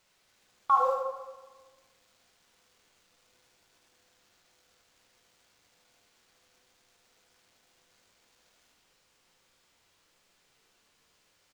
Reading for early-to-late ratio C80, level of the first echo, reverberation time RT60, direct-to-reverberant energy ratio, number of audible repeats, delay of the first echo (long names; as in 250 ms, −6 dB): 5.5 dB, −7.0 dB, 1.3 s, 0.0 dB, 1, 76 ms